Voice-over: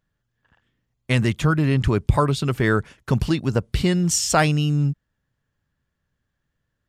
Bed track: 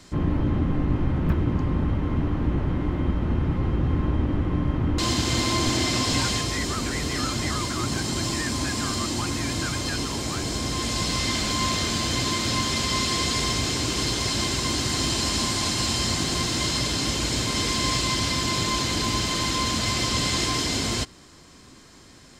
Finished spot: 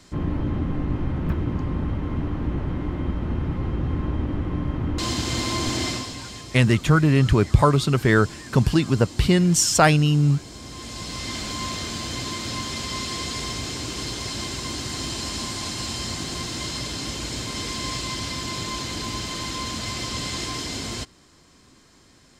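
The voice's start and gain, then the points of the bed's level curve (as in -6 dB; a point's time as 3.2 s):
5.45 s, +2.0 dB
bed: 5.89 s -2 dB
6.15 s -12.5 dB
10.5 s -12.5 dB
11.36 s -5 dB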